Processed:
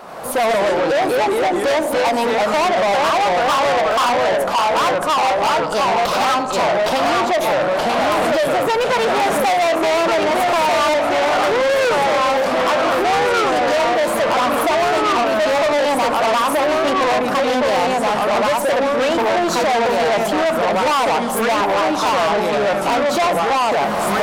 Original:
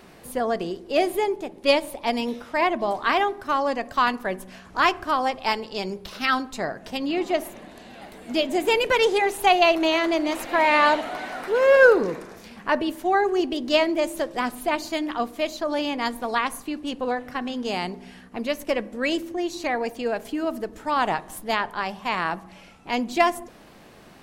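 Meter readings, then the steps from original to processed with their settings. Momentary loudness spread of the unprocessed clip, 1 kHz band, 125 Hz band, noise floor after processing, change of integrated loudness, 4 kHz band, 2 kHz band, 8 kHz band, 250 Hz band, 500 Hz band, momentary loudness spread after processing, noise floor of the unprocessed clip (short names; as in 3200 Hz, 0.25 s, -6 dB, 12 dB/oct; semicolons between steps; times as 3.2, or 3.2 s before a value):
12 LU, +9.0 dB, n/a, -20 dBFS, +7.5 dB, +7.0 dB, +5.5 dB, +12.0 dB, +4.5 dB, +8.0 dB, 2 LU, -48 dBFS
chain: recorder AGC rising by 26 dB/s; echoes that change speed 86 ms, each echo -2 st, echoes 3; band shelf 850 Hz +11.5 dB; in parallel at -1 dB: limiter -9.5 dBFS, peak gain reduction 17 dB; on the sum: soft clip -14 dBFS, distortion -6 dB; low shelf 120 Hz -10 dB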